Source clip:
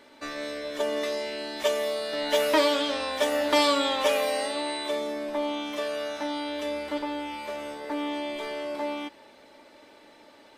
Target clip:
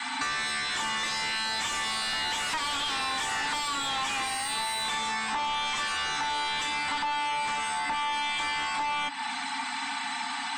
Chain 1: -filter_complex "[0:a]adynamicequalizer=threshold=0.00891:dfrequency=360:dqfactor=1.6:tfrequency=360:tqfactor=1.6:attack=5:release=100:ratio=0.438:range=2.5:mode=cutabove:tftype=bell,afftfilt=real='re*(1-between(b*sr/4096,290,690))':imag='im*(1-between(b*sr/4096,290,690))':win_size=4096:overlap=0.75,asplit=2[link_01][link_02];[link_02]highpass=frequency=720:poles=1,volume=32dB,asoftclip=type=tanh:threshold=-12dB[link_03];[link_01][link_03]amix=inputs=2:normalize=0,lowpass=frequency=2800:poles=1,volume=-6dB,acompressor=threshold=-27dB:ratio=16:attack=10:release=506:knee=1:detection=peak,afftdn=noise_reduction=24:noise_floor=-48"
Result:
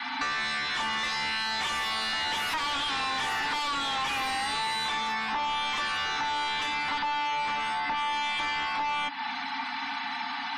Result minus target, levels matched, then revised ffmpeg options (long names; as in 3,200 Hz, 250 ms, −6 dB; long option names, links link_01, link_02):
8,000 Hz band −7.5 dB
-filter_complex "[0:a]adynamicequalizer=threshold=0.00891:dfrequency=360:dqfactor=1.6:tfrequency=360:tqfactor=1.6:attack=5:release=100:ratio=0.438:range=2.5:mode=cutabove:tftype=bell,lowpass=frequency=8000:width_type=q:width=5.5,afftfilt=real='re*(1-between(b*sr/4096,290,690))':imag='im*(1-between(b*sr/4096,290,690))':win_size=4096:overlap=0.75,asplit=2[link_01][link_02];[link_02]highpass=frequency=720:poles=1,volume=32dB,asoftclip=type=tanh:threshold=-12dB[link_03];[link_01][link_03]amix=inputs=2:normalize=0,lowpass=frequency=2800:poles=1,volume=-6dB,acompressor=threshold=-27dB:ratio=16:attack=10:release=506:knee=1:detection=peak,afftdn=noise_reduction=24:noise_floor=-48"